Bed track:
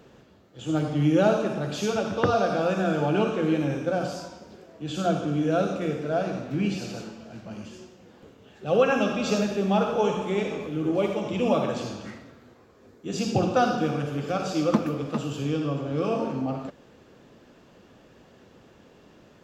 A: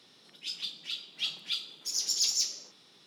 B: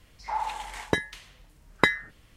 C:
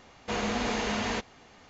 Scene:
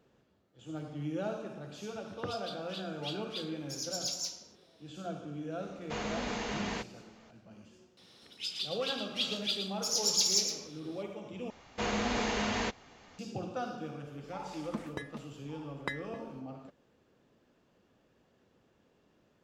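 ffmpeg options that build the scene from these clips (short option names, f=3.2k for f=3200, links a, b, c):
-filter_complex "[1:a]asplit=2[a][b];[3:a]asplit=2[c][d];[0:a]volume=-15.5dB[e];[b]aecho=1:1:113:0.422[f];[2:a]asplit=2[g][h];[h]adelay=1166,volume=-8dB,highshelf=f=4k:g=-26.2[i];[g][i]amix=inputs=2:normalize=0[j];[e]asplit=2[k][l];[k]atrim=end=11.504[m];[d]atrim=end=1.69,asetpts=PTS-STARTPTS,volume=-2dB[n];[l]atrim=start=13.186[o];[a]atrim=end=3.06,asetpts=PTS-STARTPTS,volume=-8.5dB,afade=t=in:d=0.004:c=hsin,afade=t=out:st=3.056:d=0.004:c=hsin,adelay=1840[p];[c]atrim=end=1.69,asetpts=PTS-STARTPTS,volume=-6.5dB,afade=t=in:d=0.004:c=hsin,afade=t=out:st=1.686:d=0.004:c=hsin,adelay=5620[q];[f]atrim=end=3.06,asetpts=PTS-STARTPTS,volume=-0.5dB,afade=t=in:d=0.004:c=hsin,afade=t=out:st=3.056:d=0.004:c=hsin,adelay=7970[r];[j]atrim=end=2.36,asetpts=PTS-STARTPTS,volume=-16dB,afade=t=in:d=0.004:c=hsin,afade=t=out:st=2.356:d=0.004:c=hsin,adelay=14040[s];[m][n]acrossfade=d=0.004:c1=hsin:c2=hsin[t];[t][o]acrossfade=d=0.004:c1=hsin:c2=hsin[u];[u][p][q][r][s]amix=inputs=5:normalize=0"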